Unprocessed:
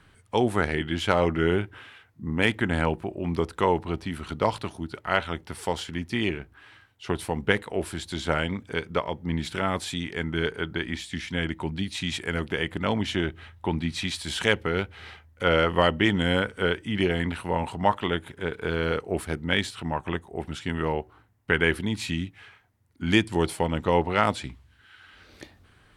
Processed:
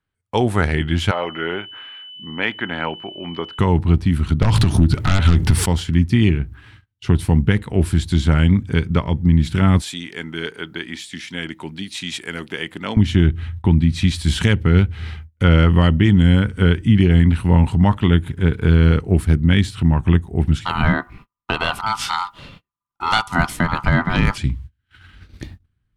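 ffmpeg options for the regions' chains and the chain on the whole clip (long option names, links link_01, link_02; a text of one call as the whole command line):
ffmpeg -i in.wav -filter_complex "[0:a]asettb=1/sr,asplit=3[link_01][link_02][link_03];[link_01]atrim=end=1.114[link_04];[link_02]atrim=start=1.11:end=3.59,asetpts=PTS-STARTPTS,afade=type=in:duration=0.004:curve=qsin,afade=type=out:start_time=2.476:duration=0.004:curve=qsin,aemphasis=mode=reproduction:type=50fm,aeval=exprs='val(0)+0.0112*sin(2*PI*3000*n/s)':channel_layout=same,highpass=520,lowpass=3800[link_05];[link_03]atrim=start=3.586[link_06];[link_04][link_05]acrossfade=duration=0.004:curve1=hsin:curve2=qsin[link_07];[link_07][link_06]acrossfade=duration=0.004:curve1=qsin:curve2=hsin,asettb=1/sr,asplit=3[link_08][link_09][link_10];[link_08]atrim=end=4.424[link_11];[link_09]atrim=start=4.42:end=5.66,asetpts=PTS-STARTPTS,afade=type=in:duration=0.004:curve=qsin,afade=type=out:start_time=1.236:duration=0.004:curve=qsin,acompressor=threshold=-38dB:ratio=3:attack=3.2:release=140:knee=1:detection=peak,aeval=exprs='0.15*sin(PI/2*6.31*val(0)/0.15)':channel_layout=same[link_12];[link_10]atrim=start=5.656[link_13];[link_11][link_12]acrossfade=duration=0.004:curve1=hsin:curve2=qsin[link_14];[link_14][link_13]acrossfade=duration=0.004:curve1=qsin:curve2=hsin,asettb=1/sr,asplit=3[link_15][link_16][link_17];[link_15]atrim=end=9.814[link_18];[link_16]atrim=start=9.81:end=12.97,asetpts=PTS-STARTPTS,afade=type=in:duration=0.004:curve=qsin,afade=type=out:start_time=3.156:duration=0.004:curve=qsin,highpass=520,equalizer=frequency=1300:width=0.48:gain=-3.5[link_19];[link_17]atrim=start=12.966[link_20];[link_18][link_19]acrossfade=duration=0.004:curve1=hsin:curve2=qsin[link_21];[link_21][link_20]acrossfade=duration=0.004:curve1=qsin:curve2=hsin,asettb=1/sr,asplit=3[link_22][link_23][link_24];[link_22]atrim=end=20.654[link_25];[link_23]atrim=start=20.65:end=24.38,asetpts=PTS-STARTPTS,afade=type=in:duration=0.004:curve=qsin,afade=type=out:start_time=3.726:duration=0.004:curve=qsin,acontrast=34,aeval=exprs='val(0)*sin(2*PI*1100*n/s)':channel_layout=same[link_26];[link_24]atrim=start=24.376[link_27];[link_25][link_26]acrossfade=duration=0.004:curve1=hsin:curve2=qsin[link_28];[link_28][link_27]acrossfade=duration=0.004:curve1=qsin:curve2=hsin,agate=range=-30dB:threshold=-51dB:ratio=16:detection=peak,asubboost=boost=8.5:cutoff=190,alimiter=limit=-10dB:level=0:latency=1:release=260,volume=5.5dB" out.wav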